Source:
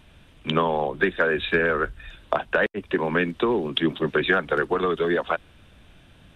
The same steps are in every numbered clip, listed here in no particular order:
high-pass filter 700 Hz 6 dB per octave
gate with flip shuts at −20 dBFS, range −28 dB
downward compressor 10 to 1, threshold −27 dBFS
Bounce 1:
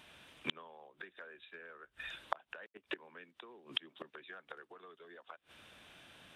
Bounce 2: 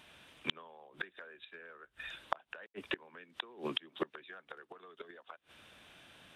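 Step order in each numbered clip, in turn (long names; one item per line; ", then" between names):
gate with flip, then downward compressor, then high-pass filter
high-pass filter, then gate with flip, then downward compressor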